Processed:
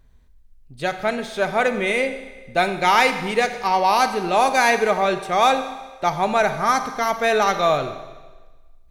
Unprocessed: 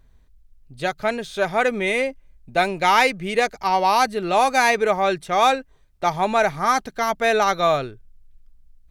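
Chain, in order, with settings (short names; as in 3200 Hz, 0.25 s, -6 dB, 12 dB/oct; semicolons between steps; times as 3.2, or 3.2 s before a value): Schroeder reverb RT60 1.3 s, combs from 30 ms, DRR 9 dB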